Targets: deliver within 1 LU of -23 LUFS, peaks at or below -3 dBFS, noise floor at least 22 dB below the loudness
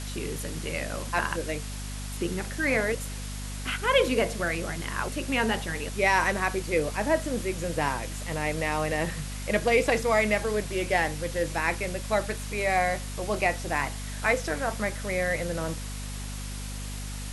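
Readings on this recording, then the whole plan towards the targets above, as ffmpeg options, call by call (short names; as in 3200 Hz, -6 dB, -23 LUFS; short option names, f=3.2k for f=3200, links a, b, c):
hum 50 Hz; harmonics up to 250 Hz; hum level -34 dBFS; noise floor -35 dBFS; noise floor target -50 dBFS; loudness -28.0 LUFS; peak -9.0 dBFS; loudness target -23.0 LUFS
-> -af "bandreject=f=50:t=h:w=4,bandreject=f=100:t=h:w=4,bandreject=f=150:t=h:w=4,bandreject=f=200:t=h:w=4,bandreject=f=250:t=h:w=4"
-af "afftdn=nr=15:nf=-35"
-af "volume=5dB"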